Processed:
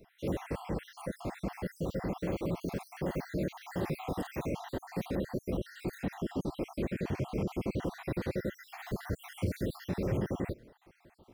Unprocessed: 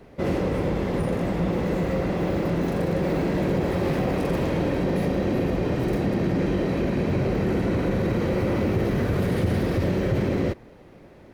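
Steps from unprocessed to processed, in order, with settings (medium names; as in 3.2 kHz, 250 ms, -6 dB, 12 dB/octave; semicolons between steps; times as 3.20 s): random holes in the spectrogram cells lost 60%; treble shelf 7.1 kHz +10 dB; trim -8 dB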